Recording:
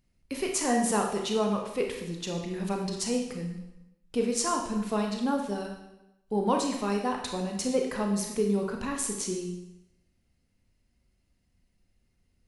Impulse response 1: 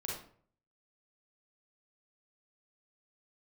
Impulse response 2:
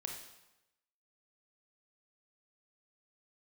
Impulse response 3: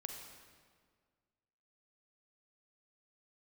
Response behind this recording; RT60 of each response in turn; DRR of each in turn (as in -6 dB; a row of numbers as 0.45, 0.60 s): 2; 0.55, 0.95, 1.8 s; -4.0, 1.5, 3.0 dB